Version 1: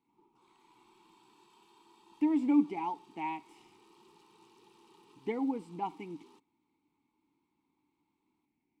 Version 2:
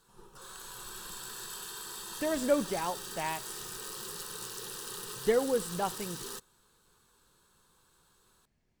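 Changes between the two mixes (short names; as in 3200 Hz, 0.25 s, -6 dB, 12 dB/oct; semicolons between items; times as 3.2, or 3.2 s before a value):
speech -10.0 dB; master: remove vowel filter u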